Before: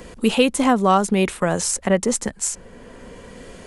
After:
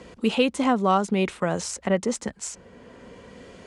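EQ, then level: HPF 65 Hz; LPF 6100 Hz 12 dB/oct; notch 1700 Hz, Q 21; -4.5 dB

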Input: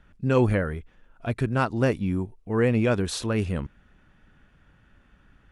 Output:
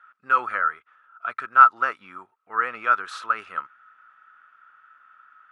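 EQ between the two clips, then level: resonant high-pass 1300 Hz, resonance Q 15; tilt -1.5 dB/oct; high shelf 4700 Hz -12 dB; 0.0 dB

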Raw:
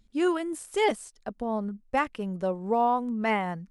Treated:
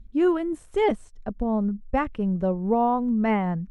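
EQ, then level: RIAA curve playback; notch 4800 Hz, Q 10; 0.0 dB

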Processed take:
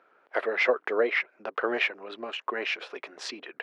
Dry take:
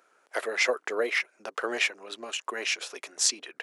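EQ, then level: air absorption 370 m; +4.5 dB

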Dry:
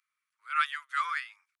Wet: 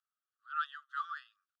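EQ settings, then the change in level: brick-wall FIR high-pass 1100 Hz; Butterworth band-stop 2200 Hz, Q 1.7; LPF 3300 Hz 12 dB/oct; -6.5 dB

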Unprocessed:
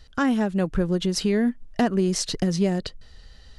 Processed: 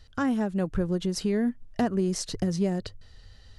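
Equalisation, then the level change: dynamic EQ 3100 Hz, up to -5 dB, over -41 dBFS, Q 0.76; bell 99 Hz +13.5 dB 0.2 oct; -4.0 dB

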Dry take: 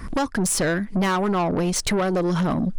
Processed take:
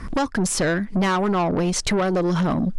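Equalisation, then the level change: LPF 8700 Hz 12 dB/oct; +1.0 dB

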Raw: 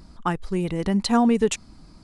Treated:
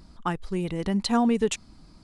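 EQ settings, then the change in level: bell 3400 Hz +2.5 dB; -3.5 dB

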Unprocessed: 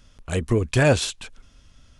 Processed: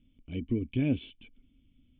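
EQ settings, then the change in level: vocal tract filter i; 0.0 dB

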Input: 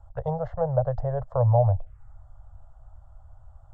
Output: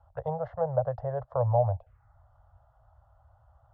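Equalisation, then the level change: HPF 63 Hz; air absorption 190 m; low shelf 330 Hz -7.5 dB; 0.0 dB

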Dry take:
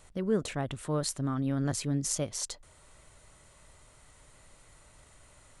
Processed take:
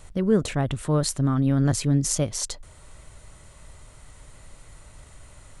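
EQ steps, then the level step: low shelf 160 Hz +8 dB; +6.0 dB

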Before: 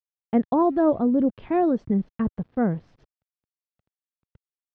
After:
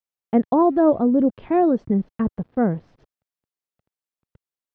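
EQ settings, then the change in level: bell 510 Hz +4 dB 2.9 oct; 0.0 dB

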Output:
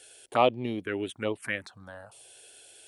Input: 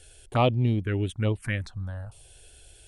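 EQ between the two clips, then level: HPF 350 Hz 12 dB/oct; dynamic EQ 6000 Hz, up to -5 dB, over -48 dBFS, Q 0.73; +2.0 dB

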